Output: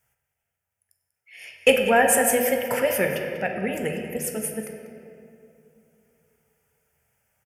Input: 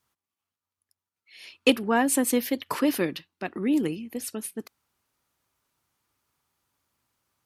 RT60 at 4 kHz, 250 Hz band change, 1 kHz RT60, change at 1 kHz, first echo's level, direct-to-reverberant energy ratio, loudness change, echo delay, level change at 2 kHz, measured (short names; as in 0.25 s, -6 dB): 1.5 s, -4.5 dB, 2.4 s, +6.0 dB, -13.5 dB, 2.5 dB, +4.0 dB, 0.192 s, +8.0 dB